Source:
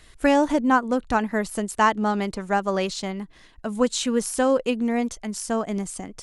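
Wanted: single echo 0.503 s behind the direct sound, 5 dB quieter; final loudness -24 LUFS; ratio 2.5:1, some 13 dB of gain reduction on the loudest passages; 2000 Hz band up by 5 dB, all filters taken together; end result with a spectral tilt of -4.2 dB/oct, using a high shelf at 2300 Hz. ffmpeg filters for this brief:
-af "equalizer=f=2k:t=o:g=9,highshelf=f=2.3k:g=-5,acompressor=threshold=-33dB:ratio=2.5,aecho=1:1:503:0.562,volume=8dB"

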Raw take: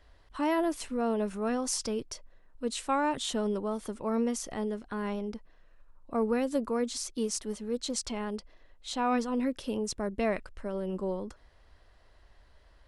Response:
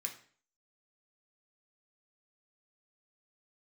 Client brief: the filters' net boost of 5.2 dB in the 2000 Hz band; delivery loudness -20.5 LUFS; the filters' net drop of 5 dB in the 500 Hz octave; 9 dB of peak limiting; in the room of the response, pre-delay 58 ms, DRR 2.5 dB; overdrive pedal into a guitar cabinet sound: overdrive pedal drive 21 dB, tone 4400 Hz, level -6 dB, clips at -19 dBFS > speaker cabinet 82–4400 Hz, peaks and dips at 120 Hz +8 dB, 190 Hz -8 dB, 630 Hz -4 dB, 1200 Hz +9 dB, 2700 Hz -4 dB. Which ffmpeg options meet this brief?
-filter_complex "[0:a]equalizer=f=500:t=o:g=-5,equalizer=f=2k:t=o:g=6,alimiter=limit=-24dB:level=0:latency=1,asplit=2[a][b];[1:a]atrim=start_sample=2205,adelay=58[c];[b][c]afir=irnorm=-1:irlink=0,volume=-1.5dB[d];[a][d]amix=inputs=2:normalize=0,asplit=2[e][f];[f]highpass=f=720:p=1,volume=21dB,asoftclip=type=tanh:threshold=-19dB[g];[e][g]amix=inputs=2:normalize=0,lowpass=f=4.4k:p=1,volume=-6dB,highpass=82,equalizer=f=120:t=q:w=4:g=8,equalizer=f=190:t=q:w=4:g=-8,equalizer=f=630:t=q:w=4:g=-4,equalizer=f=1.2k:t=q:w=4:g=9,equalizer=f=2.7k:t=q:w=4:g=-4,lowpass=f=4.4k:w=0.5412,lowpass=f=4.4k:w=1.3066,volume=7.5dB"

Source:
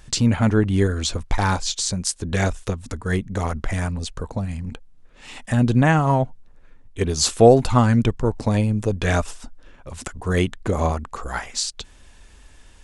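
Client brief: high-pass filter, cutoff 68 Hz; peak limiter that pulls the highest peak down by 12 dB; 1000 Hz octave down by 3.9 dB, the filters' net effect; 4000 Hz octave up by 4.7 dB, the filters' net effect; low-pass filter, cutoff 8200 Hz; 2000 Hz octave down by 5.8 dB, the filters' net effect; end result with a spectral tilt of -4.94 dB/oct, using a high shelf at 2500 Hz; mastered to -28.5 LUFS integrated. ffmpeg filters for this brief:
-af "highpass=68,lowpass=8.2k,equalizer=f=1k:t=o:g=-4.5,equalizer=f=2k:t=o:g=-9,highshelf=f=2.5k:g=5,equalizer=f=4k:t=o:g=3.5,volume=-4dB,alimiter=limit=-17dB:level=0:latency=1"

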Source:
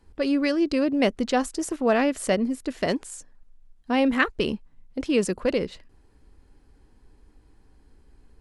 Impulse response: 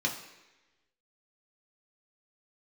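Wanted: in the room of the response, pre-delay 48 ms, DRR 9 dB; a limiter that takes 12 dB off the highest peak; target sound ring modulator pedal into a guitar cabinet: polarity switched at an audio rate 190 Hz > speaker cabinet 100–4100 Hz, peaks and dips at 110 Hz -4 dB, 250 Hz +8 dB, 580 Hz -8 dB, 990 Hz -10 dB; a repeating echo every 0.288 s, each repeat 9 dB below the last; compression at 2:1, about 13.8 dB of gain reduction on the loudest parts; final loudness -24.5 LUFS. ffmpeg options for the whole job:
-filter_complex "[0:a]acompressor=threshold=-43dB:ratio=2,alimiter=level_in=9dB:limit=-24dB:level=0:latency=1,volume=-9dB,aecho=1:1:288|576|864|1152:0.355|0.124|0.0435|0.0152,asplit=2[a][b];[1:a]atrim=start_sample=2205,adelay=48[c];[b][c]afir=irnorm=-1:irlink=0,volume=-16dB[d];[a][d]amix=inputs=2:normalize=0,aeval=exprs='val(0)*sgn(sin(2*PI*190*n/s))':c=same,highpass=100,equalizer=f=110:t=q:w=4:g=-4,equalizer=f=250:t=q:w=4:g=8,equalizer=f=580:t=q:w=4:g=-8,equalizer=f=990:t=q:w=4:g=-10,lowpass=f=4.1k:w=0.5412,lowpass=f=4.1k:w=1.3066,volume=20.5dB"

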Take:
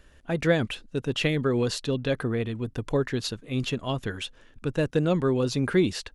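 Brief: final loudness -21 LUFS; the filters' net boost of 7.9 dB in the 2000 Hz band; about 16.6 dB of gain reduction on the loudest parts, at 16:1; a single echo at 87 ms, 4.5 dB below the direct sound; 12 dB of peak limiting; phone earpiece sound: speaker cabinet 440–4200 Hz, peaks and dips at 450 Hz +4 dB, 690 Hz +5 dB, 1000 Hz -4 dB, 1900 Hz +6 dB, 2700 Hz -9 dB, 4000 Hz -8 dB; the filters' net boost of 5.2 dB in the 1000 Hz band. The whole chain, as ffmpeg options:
-af "equalizer=f=1k:t=o:g=5,equalizer=f=2k:t=o:g=6.5,acompressor=threshold=-32dB:ratio=16,alimiter=level_in=8.5dB:limit=-24dB:level=0:latency=1,volume=-8.5dB,highpass=440,equalizer=f=450:t=q:w=4:g=4,equalizer=f=690:t=q:w=4:g=5,equalizer=f=1k:t=q:w=4:g=-4,equalizer=f=1.9k:t=q:w=4:g=6,equalizer=f=2.7k:t=q:w=4:g=-9,equalizer=f=4k:t=q:w=4:g=-8,lowpass=f=4.2k:w=0.5412,lowpass=f=4.2k:w=1.3066,aecho=1:1:87:0.596,volume=22dB"

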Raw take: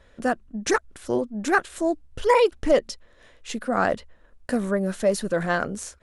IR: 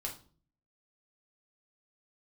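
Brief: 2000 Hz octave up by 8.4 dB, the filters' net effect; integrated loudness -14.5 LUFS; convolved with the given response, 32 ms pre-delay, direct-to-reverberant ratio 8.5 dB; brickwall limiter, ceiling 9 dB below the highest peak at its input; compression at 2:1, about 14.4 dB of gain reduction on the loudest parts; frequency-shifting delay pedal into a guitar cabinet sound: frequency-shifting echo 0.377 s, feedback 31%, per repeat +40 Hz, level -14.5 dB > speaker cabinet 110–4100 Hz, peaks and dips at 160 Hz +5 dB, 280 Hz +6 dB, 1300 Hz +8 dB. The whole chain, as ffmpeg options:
-filter_complex "[0:a]equalizer=f=2k:t=o:g=8.5,acompressor=threshold=-39dB:ratio=2,alimiter=level_in=1.5dB:limit=-24dB:level=0:latency=1,volume=-1.5dB,asplit=2[a][b];[1:a]atrim=start_sample=2205,adelay=32[c];[b][c]afir=irnorm=-1:irlink=0,volume=-8.5dB[d];[a][d]amix=inputs=2:normalize=0,asplit=4[e][f][g][h];[f]adelay=377,afreqshift=40,volume=-14.5dB[i];[g]adelay=754,afreqshift=80,volume=-24.7dB[j];[h]adelay=1131,afreqshift=120,volume=-34.8dB[k];[e][i][j][k]amix=inputs=4:normalize=0,highpass=110,equalizer=f=160:t=q:w=4:g=5,equalizer=f=280:t=q:w=4:g=6,equalizer=f=1.3k:t=q:w=4:g=8,lowpass=f=4.1k:w=0.5412,lowpass=f=4.1k:w=1.3066,volume=20.5dB"

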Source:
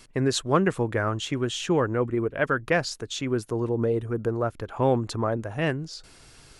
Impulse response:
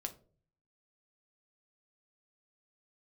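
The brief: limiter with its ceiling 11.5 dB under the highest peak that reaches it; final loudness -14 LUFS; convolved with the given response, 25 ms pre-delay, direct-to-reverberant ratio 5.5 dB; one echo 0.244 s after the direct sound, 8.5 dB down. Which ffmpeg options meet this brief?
-filter_complex "[0:a]alimiter=limit=-19.5dB:level=0:latency=1,aecho=1:1:244:0.376,asplit=2[a][b];[1:a]atrim=start_sample=2205,adelay=25[c];[b][c]afir=irnorm=-1:irlink=0,volume=-4dB[d];[a][d]amix=inputs=2:normalize=0,volume=14dB"

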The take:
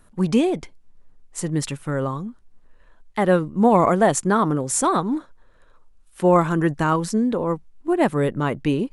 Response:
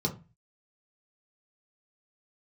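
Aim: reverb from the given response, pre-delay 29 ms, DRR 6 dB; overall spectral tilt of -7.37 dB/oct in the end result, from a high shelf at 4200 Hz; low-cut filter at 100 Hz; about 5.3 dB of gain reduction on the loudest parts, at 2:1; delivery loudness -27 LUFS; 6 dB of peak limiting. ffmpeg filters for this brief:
-filter_complex "[0:a]highpass=100,highshelf=f=4.2k:g=-7,acompressor=threshold=-21dB:ratio=2,alimiter=limit=-16dB:level=0:latency=1,asplit=2[a][b];[1:a]atrim=start_sample=2205,adelay=29[c];[b][c]afir=irnorm=-1:irlink=0,volume=-12.5dB[d];[a][d]amix=inputs=2:normalize=0,volume=-5dB"

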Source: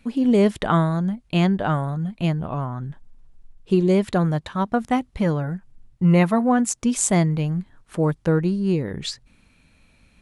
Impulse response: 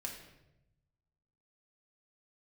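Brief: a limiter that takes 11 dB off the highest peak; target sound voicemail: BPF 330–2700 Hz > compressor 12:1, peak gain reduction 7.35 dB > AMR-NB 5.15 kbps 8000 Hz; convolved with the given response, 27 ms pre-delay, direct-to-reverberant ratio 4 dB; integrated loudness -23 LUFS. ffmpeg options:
-filter_complex "[0:a]alimiter=limit=-16dB:level=0:latency=1,asplit=2[a][b];[1:a]atrim=start_sample=2205,adelay=27[c];[b][c]afir=irnorm=-1:irlink=0,volume=-3dB[d];[a][d]amix=inputs=2:normalize=0,highpass=330,lowpass=2.7k,acompressor=threshold=-27dB:ratio=12,volume=11.5dB" -ar 8000 -c:a libopencore_amrnb -b:a 5150

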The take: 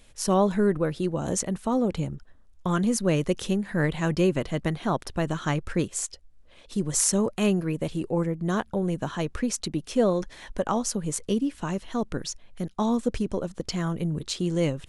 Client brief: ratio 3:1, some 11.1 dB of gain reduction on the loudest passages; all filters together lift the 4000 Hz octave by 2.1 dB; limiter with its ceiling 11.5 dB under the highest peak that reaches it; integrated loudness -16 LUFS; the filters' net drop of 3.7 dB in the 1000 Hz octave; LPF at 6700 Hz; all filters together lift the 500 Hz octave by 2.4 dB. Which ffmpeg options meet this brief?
-af "lowpass=6.7k,equalizer=f=500:t=o:g=4.5,equalizer=f=1k:t=o:g=-7,equalizer=f=4k:t=o:g=4,acompressor=threshold=-32dB:ratio=3,volume=22dB,alimiter=limit=-6dB:level=0:latency=1"

